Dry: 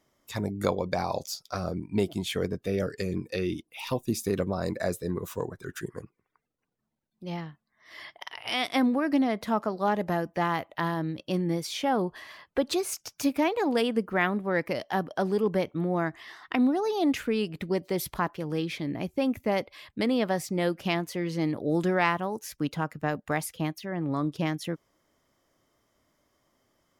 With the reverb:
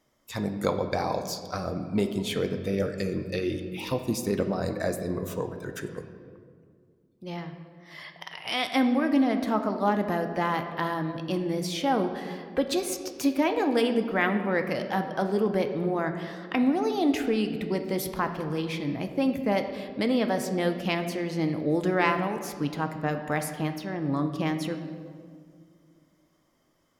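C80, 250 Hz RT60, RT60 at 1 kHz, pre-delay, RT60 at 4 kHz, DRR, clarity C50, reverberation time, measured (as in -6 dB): 10.0 dB, 3.0 s, 1.8 s, 4 ms, 1.2 s, 6.0 dB, 8.5 dB, 2.1 s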